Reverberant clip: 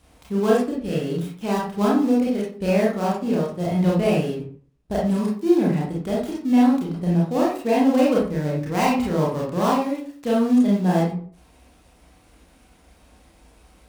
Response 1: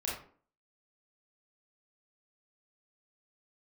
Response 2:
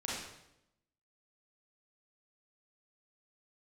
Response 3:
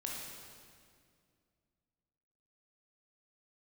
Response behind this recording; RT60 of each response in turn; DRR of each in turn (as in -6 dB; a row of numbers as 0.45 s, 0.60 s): 1; 0.45 s, 0.85 s, 2.2 s; -5.5 dB, -6.5 dB, -2.5 dB